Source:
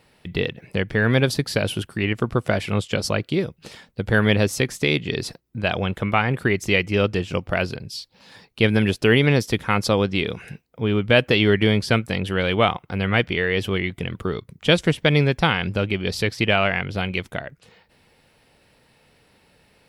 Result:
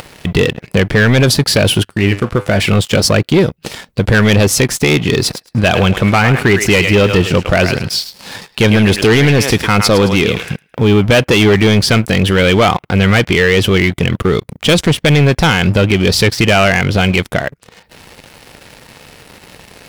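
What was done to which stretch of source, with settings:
1.83–2.60 s: feedback comb 100 Hz, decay 0.42 s
5.22–10.90 s: thinning echo 107 ms, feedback 32%, high-pass 780 Hz, level -10 dB
whole clip: upward compressor, threshold -34 dBFS; waveshaping leveller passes 3; loudness maximiser +8 dB; trim -3 dB

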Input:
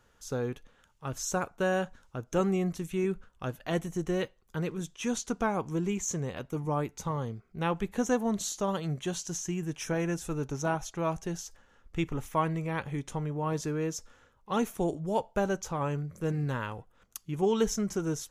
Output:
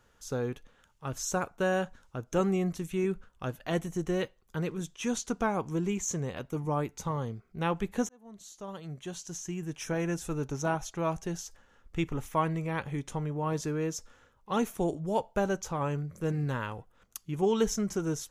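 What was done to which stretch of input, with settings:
8.09–10.18 s: fade in

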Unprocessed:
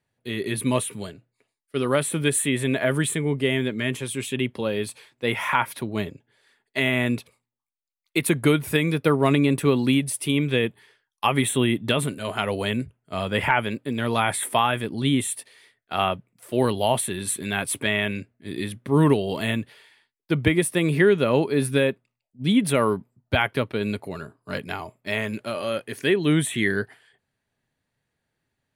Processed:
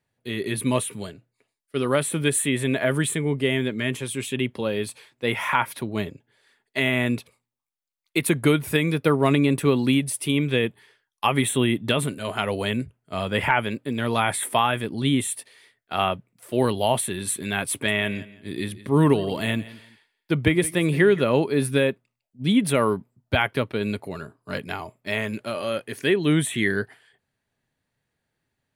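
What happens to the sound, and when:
17.71–21.21 s: feedback delay 170 ms, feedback 26%, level -18 dB

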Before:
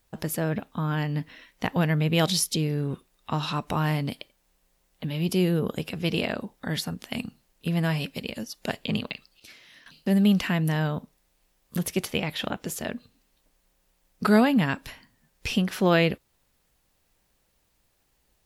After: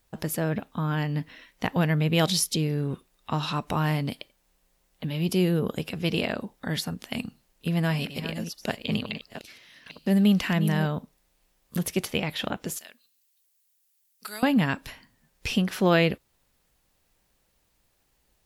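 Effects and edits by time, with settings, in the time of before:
7.12–10.86 s: chunks repeated in reverse 478 ms, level -10.5 dB
12.78–14.43 s: differentiator

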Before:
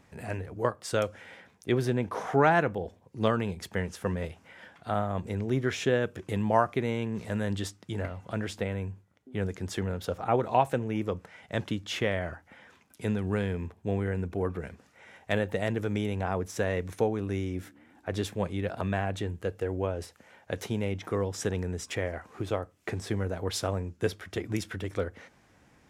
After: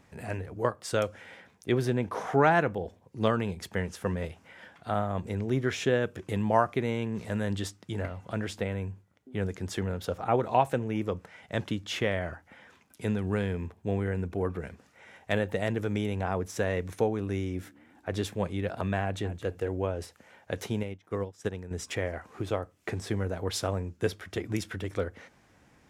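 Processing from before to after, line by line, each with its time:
19.02–19.46 s: echo throw 220 ms, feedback 15%, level -13 dB
20.83–21.71 s: upward expansion 2.5:1, over -39 dBFS

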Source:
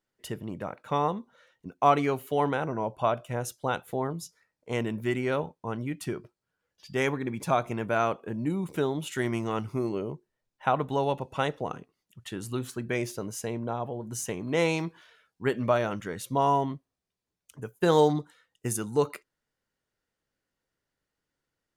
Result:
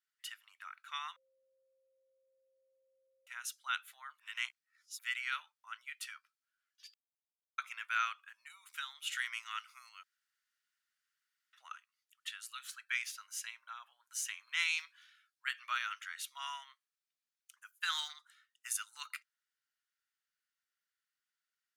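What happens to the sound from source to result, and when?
1.16–3.27 s: bleep 529 Hz -22 dBFS
4.19–4.99 s: reverse
6.94–7.58 s: mute
10.03–11.53 s: room tone
14.64–15.48 s: high-pass 1.4 kHz 6 dB/octave
whole clip: elliptic high-pass 1.3 kHz, stop band 70 dB; dynamic bell 2.9 kHz, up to +6 dB, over -49 dBFS, Q 0.84; trim -4 dB

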